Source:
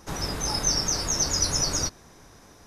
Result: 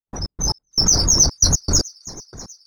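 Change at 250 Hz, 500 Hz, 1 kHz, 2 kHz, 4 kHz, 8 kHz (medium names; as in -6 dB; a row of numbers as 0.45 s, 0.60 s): +6.5 dB, +3.0 dB, +0.5 dB, -4.5 dB, +7.0 dB, +8.5 dB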